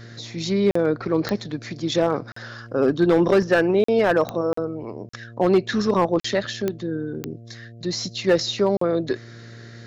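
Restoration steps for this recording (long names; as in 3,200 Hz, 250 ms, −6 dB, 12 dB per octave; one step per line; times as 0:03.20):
clipped peaks rebuilt −10.5 dBFS
click removal
hum removal 115.8 Hz, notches 6
repair the gap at 0:00.71/0:02.32/0:03.84/0:04.53/0:05.09/0:06.20/0:08.77, 44 ms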